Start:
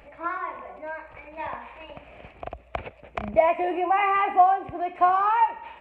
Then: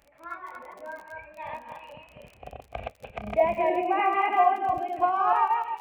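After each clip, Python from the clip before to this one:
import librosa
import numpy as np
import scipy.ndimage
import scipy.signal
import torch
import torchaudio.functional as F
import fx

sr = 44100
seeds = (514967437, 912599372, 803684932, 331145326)

y = fx.reverse_delay_fb(x, sr, ms=148, feedback_pct=40, wet_db=-0.5)
y = fx.noise_reduce_blind(y, sr, reduce_db=9)
y = fx.dmg_crackle(y, sr, seeds[0], per_s=28.0, level_db=-33.0)
y = y * librosa.db_to_amplitude(-5.0)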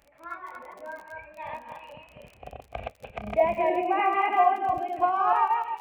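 y = x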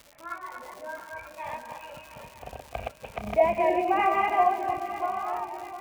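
y = fx.fade_out_tail(x, sr, length_s=1.86)
y = fx.dmg_crackle(y, sr, seeds[1], per_s=180.0, level_db=-37.0)
y = fx.echo_swing(y, sr, ms=939, ratio=3, feedback_pct=49, wet_db=-13.5)
y = y * librosa.db_to_amplitude(1.0)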